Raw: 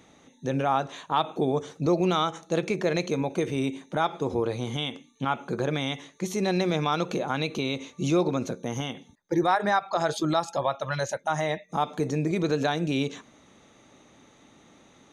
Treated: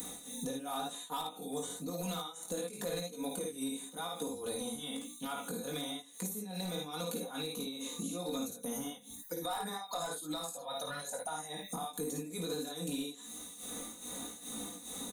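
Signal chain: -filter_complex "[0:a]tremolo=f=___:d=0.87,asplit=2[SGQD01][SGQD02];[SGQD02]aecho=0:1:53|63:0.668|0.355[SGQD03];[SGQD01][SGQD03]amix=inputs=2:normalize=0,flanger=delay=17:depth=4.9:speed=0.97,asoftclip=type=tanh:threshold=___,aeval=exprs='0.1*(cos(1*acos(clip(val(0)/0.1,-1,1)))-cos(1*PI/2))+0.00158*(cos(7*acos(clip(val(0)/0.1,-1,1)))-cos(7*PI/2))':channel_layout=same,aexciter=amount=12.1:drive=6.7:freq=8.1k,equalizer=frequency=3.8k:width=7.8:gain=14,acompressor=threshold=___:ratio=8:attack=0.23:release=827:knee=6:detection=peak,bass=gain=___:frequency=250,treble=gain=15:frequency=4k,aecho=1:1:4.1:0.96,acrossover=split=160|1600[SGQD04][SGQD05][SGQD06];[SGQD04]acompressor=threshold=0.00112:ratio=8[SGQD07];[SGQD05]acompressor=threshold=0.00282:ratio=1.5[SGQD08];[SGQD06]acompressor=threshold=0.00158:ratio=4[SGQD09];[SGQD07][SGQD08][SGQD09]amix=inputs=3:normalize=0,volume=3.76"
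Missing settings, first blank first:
2.4, 0.1, 0.00631, 0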